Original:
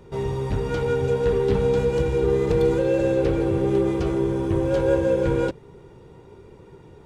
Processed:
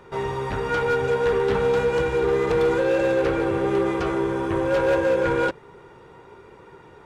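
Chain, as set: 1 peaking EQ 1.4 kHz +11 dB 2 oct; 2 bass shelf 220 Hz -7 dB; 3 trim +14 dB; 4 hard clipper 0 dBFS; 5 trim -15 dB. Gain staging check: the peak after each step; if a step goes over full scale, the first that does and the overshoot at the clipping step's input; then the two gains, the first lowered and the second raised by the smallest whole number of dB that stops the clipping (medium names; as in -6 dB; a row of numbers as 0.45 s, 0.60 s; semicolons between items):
-4.0 dBFS, -4.5 dBFS, +9.5 dBFS, 0.0 dBFS, -15.0 dBFS; step 3, 9.5 dB; step 3 +4 dB, step 5 -5 dB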